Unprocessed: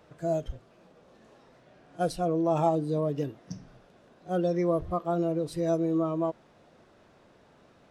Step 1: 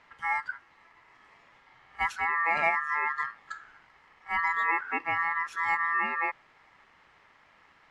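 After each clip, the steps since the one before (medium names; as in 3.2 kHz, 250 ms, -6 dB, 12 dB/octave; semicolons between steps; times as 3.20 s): ring modulator 1.5 kHz; distance through air 58 m; trim +2 dB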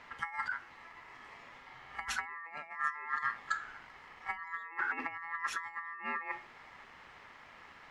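on a send at -15 dB: reverberation, pre-delay 4 ms; on the sum: compressor with a negative ratio -35 dBFS, ratio -0.5; trim -2 dB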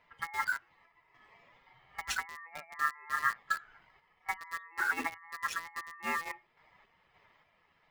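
expander on every frequency bin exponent 1.5; random-step tremolo; in parallel at -3.5 dB: bit crusher 7-bit; on the sum: trim +2.5 dB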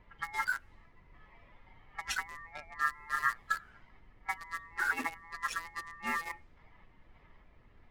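coarse spectral quantiser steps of 15 dB; added noise brown -58 dBFS; level-controlled noise filter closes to 3 kHz, open at -34 dBFS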